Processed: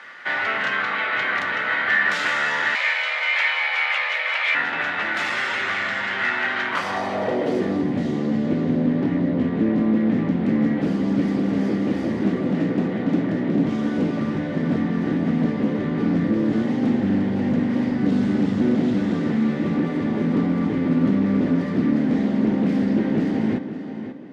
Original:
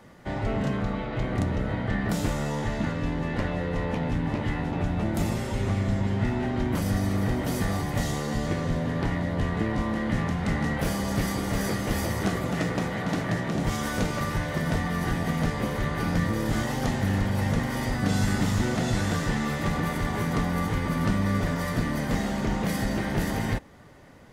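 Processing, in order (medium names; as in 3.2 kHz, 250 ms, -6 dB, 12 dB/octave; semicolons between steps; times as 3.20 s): frequency weighting D; sine folder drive 12 dB, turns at -7.5 dBFS; tape echo 535 ms, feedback 31%, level -6.5 dB, low-pass 4.3 kHz; band-pass sweep 1.5 kHz -> 260 Hz, 6.62–7.86 s; 2.75–4.55 s: frequency shift +340 Hz; on a send at -23 dB: reverberation, pre-delay 3 ms; on the sum: loudspeaker Doppler distortion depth 0.18 ms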